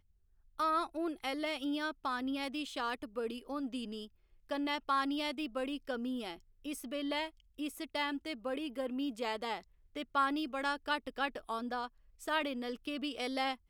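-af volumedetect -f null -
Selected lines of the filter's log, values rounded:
mean_volume: -37.7 dB
max_volume: -19.5 dB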